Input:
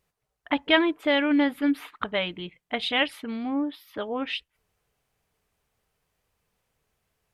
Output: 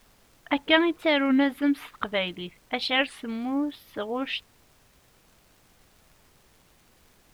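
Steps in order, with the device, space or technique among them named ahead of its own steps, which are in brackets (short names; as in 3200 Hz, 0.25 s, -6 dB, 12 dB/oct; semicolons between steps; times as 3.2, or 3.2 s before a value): warped LP (record warp 33 1/3 rpm, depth 160 cents; crackle; pink noise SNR 31 dB)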